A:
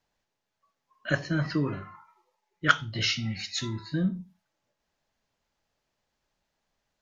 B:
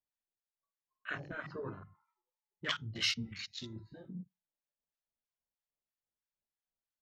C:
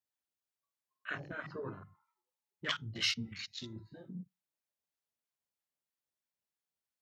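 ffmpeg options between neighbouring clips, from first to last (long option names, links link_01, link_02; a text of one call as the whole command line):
ffmpeg -i in.wav -filter_complex "[0:a]afftfilt=real='re*lt(hypot(re,im),0.251)':imag='im*lt(hypot(re,im),0.251)':win_size=1024:overlap=0.75,acrossover=split=980[link_01][link_02];[link_01]aeval=exprs='val(0)*(1-0.7/2+0.7/2*cos(2*PI*3.1*n/s))':channel_layout=same[link_03];[link_02]aeval=exprs='val(0)*(1-0.7/2-0.7/2*cos(2*PI*3.1*n/s))':channel_layout=same[link_04];[link_03][link_04]amix=inputs=2:normalize=0,afwtdn=0.00891,volume=-3.5dB" out.wav
ffmpeg -i in.wav -af "highpass=74" out.wav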